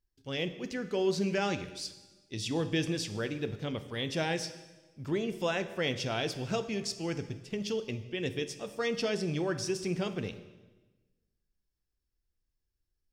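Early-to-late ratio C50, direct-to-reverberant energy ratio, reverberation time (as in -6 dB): 12.5 dB, 10.0 dB, 1.2 s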